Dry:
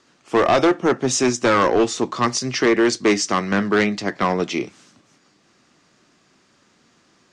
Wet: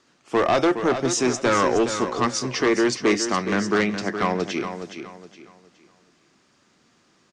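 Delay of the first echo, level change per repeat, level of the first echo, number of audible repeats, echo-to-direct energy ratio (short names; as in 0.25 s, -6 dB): 0.417 s, -10.0 dB, -9.0 dB, 3, -8.5 dB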